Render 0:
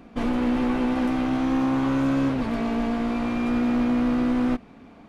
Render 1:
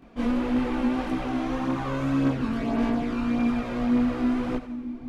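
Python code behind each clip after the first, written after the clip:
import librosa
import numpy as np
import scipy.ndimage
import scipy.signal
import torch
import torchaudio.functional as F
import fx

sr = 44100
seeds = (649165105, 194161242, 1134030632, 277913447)

y = fx.echo_split(x, sr, split_hz=410.0, low_ms=610, high_ms=87, feedback_pct=52, wet_db=-12.0)
y = fx.chorus_voices(y, sr, voices=2, hz=0.88, base_ms=23, depth_ms=2.1, mix_pct=65)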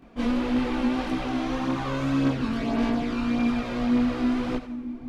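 y = fx.dynamic_eq(x, sr, hz=4300.0, q=0.88, threshold_db=-53.0, ratio=4.0, max_db=6)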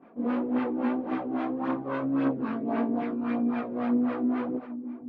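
y = scipy.signal.sosfilt(scipy.signal.butter(2, 260.0, 'highpass', fs=sr, output='sos'), x)
y = fx.filter_lfo_lowpass(y, sr, shape='sine', hz=3.7, low_hz=350.0, high_hz=1800.0, q=0.97)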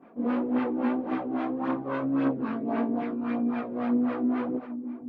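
y = fx.rider(x, sr, range_db=3, speed_s=2.0)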